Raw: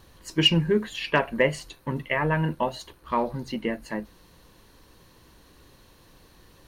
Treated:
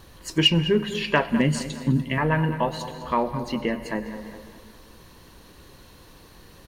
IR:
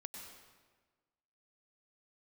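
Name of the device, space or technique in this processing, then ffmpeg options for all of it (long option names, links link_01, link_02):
ducked reverb: -filter_complex "[0:a]asettb=1/sr,asplit=3[link_01][link_02][link_03];[link_01]atrim=end=1.294[link_04];[link_02]atrim=start=1.29:end=2.18,asetpts=PTS-STARTPTS,afade=type=in:duration=0.004:curve=qsin,afade=type=out:start_time=0.886:duration=0.004:curve=qsin,equalizer=frequency=125:width_type=o:width=1:gain=6,equalizer=frequency=250:width_type=o:width=1:gain=11,equalizer=frequency=500:width_type=o:width=1:gain=-10,equalizer=frequency=1000:width_type=o:width=1:gain=-9,equalizer=frequency=2000:width_type=o:width=1:gain=-6,equalizer=frequency=4000:width_type=o:width=1:gain=4,equalizer=frequency=8000:width_type=o:width=1:gain=6[link_05];[link_03]atrim=start=2.176[link_06];[link_04][link_05]acrossfade=duration=0.004:curve1=hsin:curve2=qsin[link_07];[link_07][link_06]acrossfade=duration=0.004:curve1=qsin:curve2=hsin,asplit=2[link_08][link_09];[link_09]adelay=205,lowpass=frequency=4700:poles=1,volume=-13dB,asplit=2[link_10][link_11];[link_11]adelay=205,lowpass=frequency=4700:poles=1,volume=0.48,asplit=2[link_12][link_13];[link_13]adelay=205,lowpass=frequency=4700:poles=1,volume=0.48,asplit=2[link_14][link_15];[link_15]adelay=205,lowpass=frequency=4700:poles=1,volume=0.48,asplit=2[link_16][link_17];[link_17]adelay=205,lowpass=frequency=4700:poles=1,volume=0.48[link_18];[link_08][link_10][link_12][link_14][link_16][link_18]amix=inputs=6:normalize=0,asplit=3[link_19][link_20][link_21];[1:a]atrim=start_sample=2205[link_22];[link_20][link_22]afir=irnorm=-1:irlink=0[link_23];[link_21]apad=whole_len=304094[link_24];[link_23][link_24]sidechaincompress=threshold=-30dB:ratio=8:attack=16:release=672,volume=3.5dB[link_25];[link_19][link_25]amix=inputs=2:normalize=0"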